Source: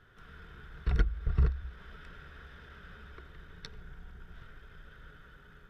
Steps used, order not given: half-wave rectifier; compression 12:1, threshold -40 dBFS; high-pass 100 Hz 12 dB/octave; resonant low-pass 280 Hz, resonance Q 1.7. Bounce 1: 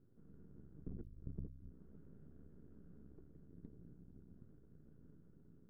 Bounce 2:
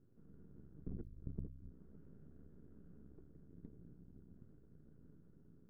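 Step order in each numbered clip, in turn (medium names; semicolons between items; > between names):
high-pass > compression > half-wave rectifier > resonant low-pass; high-pass > half-wave rectifier > compression > resonant low-pass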